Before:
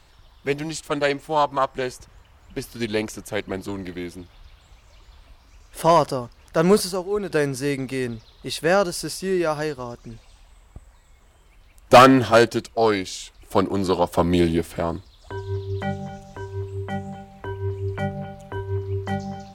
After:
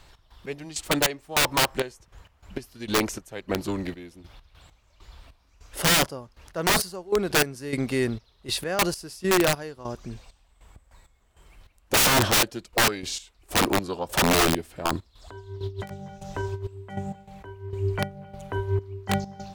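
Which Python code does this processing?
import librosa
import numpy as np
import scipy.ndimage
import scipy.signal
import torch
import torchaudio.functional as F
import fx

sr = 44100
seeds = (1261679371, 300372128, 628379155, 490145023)

y = fx.step_gate(x, sr, bpm=99, pattern='x.x..xx..xxx..', floor_db=-12.0, edge_ms=4.5)
y = (np.mod(10.0 ** (15.5 / 20.0) * y + 1.0, 2.0) - 1.0) / 10.0 ** (15.5 / 20.0)
y = fx.over_compress(y, sr, threshold_db=-32.0, ratio=-0.5, at=(15.63, 16.68))
y = y * 10.0 ** (1.5 / 20.0)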